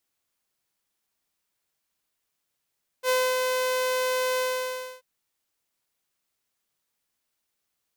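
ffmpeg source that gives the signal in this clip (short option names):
-f lavfi -i "aevalsrc='0.133*(2*mod(510*t,1)-1)':d=1.986:s=44100,afade=t=in:d=0.061,afade=t=out:st=0.061:d=0.261:silence=0.668,afade=t=out:st=1.36:d=0.626"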